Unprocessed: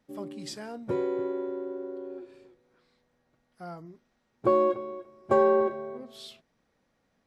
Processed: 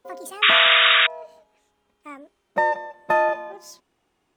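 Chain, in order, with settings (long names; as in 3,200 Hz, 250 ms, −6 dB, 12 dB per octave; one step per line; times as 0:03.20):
gliding playback speed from 183% → 150%
sound drawn into the spectrogram noise, 0:00.42–0:01.07, 1,100–3,800 Hz −18 dBFS
level +2.5 dB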